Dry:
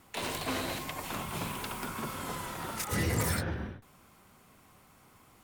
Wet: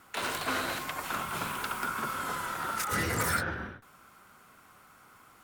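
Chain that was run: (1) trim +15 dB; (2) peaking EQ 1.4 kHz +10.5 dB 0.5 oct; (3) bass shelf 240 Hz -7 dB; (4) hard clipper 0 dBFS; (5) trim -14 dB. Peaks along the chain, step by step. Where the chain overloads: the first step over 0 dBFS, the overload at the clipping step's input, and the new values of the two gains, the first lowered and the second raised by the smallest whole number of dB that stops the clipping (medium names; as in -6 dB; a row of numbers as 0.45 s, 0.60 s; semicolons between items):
-4.5 dBFS, -2.0 dBFS, -3.0 dBFS, -3.0 dBFS, -17.0 dBFS; nothing clips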